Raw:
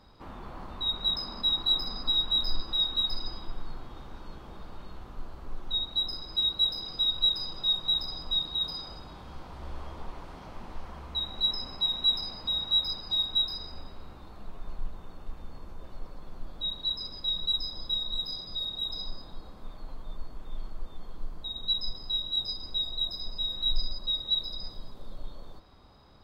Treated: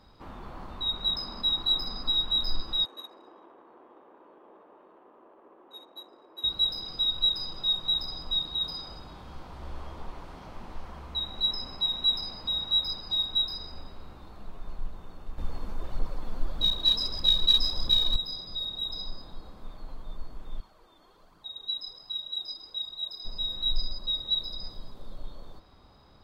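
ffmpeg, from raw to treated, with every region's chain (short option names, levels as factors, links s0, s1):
-filter_complex "[0:a]asettb=1/sr,asplit=3[s0][s1][s2];[s0]atrim=end=2.854[s3];[s1]atrim=start=2.85:end=6.44,asetpts=PTS-STARTPTS,afade=t=in:d=0.004:c=qsin,afade=t=out:st=3.586:d=0.004:c=qsin,highpass=f=340:w=0.5412,highpass=f=340:w=1.3066,equalizer=f=770:t=q:w=4:g=-4,equalizer=f=1400:t=q:w=4:g=-7,equalizer=f=2200:t=q:w=4:g=-5,lowpass=f=2900:w=0.5412,lowpass=f=2900:w=1.3066,adynamicsmooth=sensitivity=7:basefreq=1400[s4];[s2]atrim=start=6.436[s5];[s3][s4]acrossfade=d=0.004:c1=hsin:c2=qsin[s6];[s6][s5]acrossfade=d=0.004:c1=qsin:c2=hsin,asettb=1/sr,asplit=3[s7][s8][s9];[s7]atrim=end=15.384[s10];[s8]atrim=start=15.38:end=18.16,asetpts=PTS-STARTPTS,afade=t=in:d=0.004:c=qsin,afade=t=out:st=2.776:d=0.004:c=qsin,acontrast=59,aphaser=in_gain=1:out_gain=1:delay=4.8:decay=0.42:speed=1.6:type=triangular[s11];[s9]atrim=start=18.156[s12];[s10][s11]acrossfade=d=0.004:c1=hsin:c2=qsin[s13];[s13][s12]acrossfade=d=0.004:c1=qsin:c2=hsin,asettb=1/sr,asplit=3[s14][s15][s16];[s14]atrim=end=20.604[s17];[s15]atrim=start=20.6:end=23.25,asetpts=PTS-STARTPTS,afade=t=in:d=0.004:c=qsin,afade=t=out:st=2.646:d=0.004:c=qsin,highpass=f=470:p=1,flanger=delay=0.6:depth=2.9:regen=34:speed=1.3:shape=triangular[s18];[s16]atrim=start=23.246[s19];[s17][s18]acrossfade=d=0.004:c1=hsin:c2=qsin[s20];[s20][s19]acrossfade=d=0.004:c1=qsin:c2=hsin"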